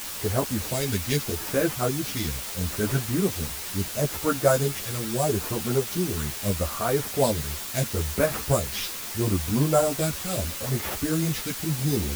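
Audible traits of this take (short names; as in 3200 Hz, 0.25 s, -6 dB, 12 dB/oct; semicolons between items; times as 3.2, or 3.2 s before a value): aliases and images of a low sample rate 8600 Hz; phasing stages 2, 0.76 Hz, lowest notch 730–4400 Hz; a quantiser's noise floor 6-bit, dither triangular; a shimmering, thickened sound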